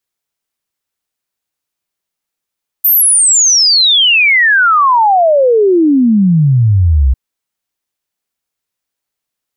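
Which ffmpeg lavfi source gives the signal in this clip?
-f lavfi -i "aevalsrc='0.531*clip(min(t,4.3-t)/0.01,0,1)*sin(2*PI*14000*4.3/log(61/14000)*(exp(log(61/14000)*t/4.3)-1))':d=4.3:s=44100"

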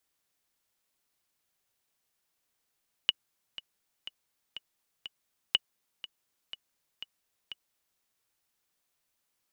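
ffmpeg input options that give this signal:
-f lavfi -i "aevalsrc='pow(10,(-9.5-17*gte(mod(t,5*60/122),60/122))/20)*sin(2*PI*2930*mod(t,60/122))*exp(-6.91*mod(t,60/122)/0.03)':d=4.91:s=44100"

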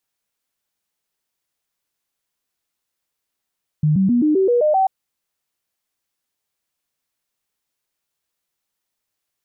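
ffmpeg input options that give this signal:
-f lavfi -i "aevalsrc='0.237*clip(min(mod(t,0.13),0.13-mod(t,0.13))/0.005,0,1)*sin(2*PI*152*pow(2,floor(t/0.13)/3)*mod(t,0.13))':d=1.04:s=44100"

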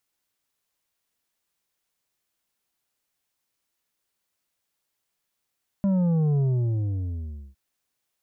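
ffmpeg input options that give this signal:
-f lavfi -i "aevalsrc='0.1*clip((1.71-t)/1.16,0,1)*tanh(2.24*sin(2*PI*200*1.71/log(65/200)*(exp(log(65/200)*t/1.71)-1)))/tanh(2.24)':d=1.71:s=44100"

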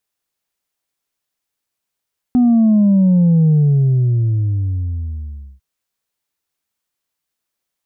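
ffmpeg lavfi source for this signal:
-f lavfi -i "aevalsrc='0.355*clip((3.25-t)/2.12,0,1)*tanh(1.19*sin(2*PI*250*3.25/log(65/250)*(exp(log(65/250)*t/3.25)-1)))/tanh(1.19)':d=3.25:s=44100"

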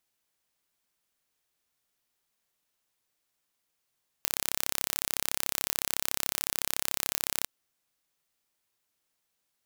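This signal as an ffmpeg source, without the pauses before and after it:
-f lavfi -i "aevalsrc='0.841*eq(mod(n,1305),0)':d=3.22:s=44100"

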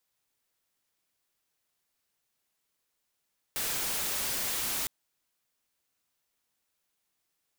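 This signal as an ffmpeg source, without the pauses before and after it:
-f lavfi -i "anoisesrc=c=white:a=0.0435:d=1.31:r=44100:seed=1"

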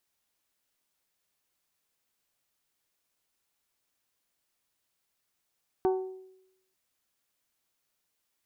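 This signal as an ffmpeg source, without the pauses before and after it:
-f lavfi -i "aevalsrc='0.0891*pow(10,-3*t/0.84)*sin(2*PI*376*t)+0.0398*pow(10,-3*t/0.517)*sin(2*PI*752*t)+0.0178*pow(10,-3*t/0.455)*sin(2*PI*902.4*t)+0.00794*pow(10,-3*t/0.389)*sin(2*PI*1128*t)+0.00355*pow(10,-3*t/0.318)*sin(2*PI*1504*t)':d=0.89:s=44100"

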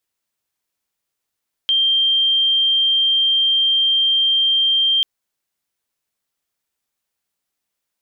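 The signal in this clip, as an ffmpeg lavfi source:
-f lavfi -i "aevalsrc='0.224*sin(2*PI*3170*t)':d=3.34:s=44100"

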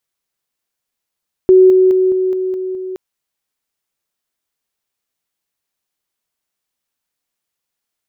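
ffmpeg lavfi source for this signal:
-f lavfi -i "aevalsrc='pow(10,(-3.5-3*floor(t/0.21))/20)*sin(2*PI*373*t)':d=1.47:s=44100"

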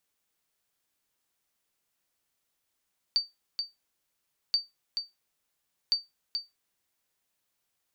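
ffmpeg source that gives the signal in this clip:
-f lavfi -i "aevalsrc='0.141*(sin(2*PI*4610*mod(t,1.38))*exp(-6.91*mod(t,1.38)/0.19)+0.473*sin(2*PI*4610*max(mod(t,1.38)-0.43,0))*exp(-6.91*max(mod(t,1.38)-0.43,0)/0.19))':d=4.14:s=44100"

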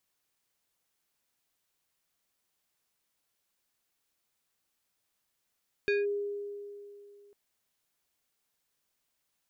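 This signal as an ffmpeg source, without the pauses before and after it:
-f lavfi -i "aevalsrc='0.0668*pow(10,-3*t/2.69)*sin(2*PI*407*t+0.89*clip(1-t/0.18,0,1)*sin(2*PI*5.04*407*t))':d=1.45:s=44100"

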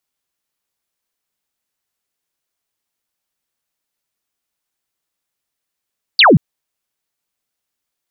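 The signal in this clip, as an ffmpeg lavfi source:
-f lavfi -i "aevalsrc='0.596*clip(t/0.002,0,1)*clip((0.18-t)/0.002,0,1)*sin(2*PI*4900*0.18/log(120/4900)*(exp(log(120/4900)*t/0.18)-1))':d=0.18:s=44100"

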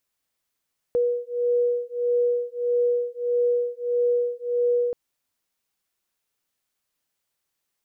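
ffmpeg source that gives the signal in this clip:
-f lavfi -i "aevalsrc='0.0668*(sin(2*PI*483*t)+sin(2*PI*484.6*t))':d=3.98:s=44100"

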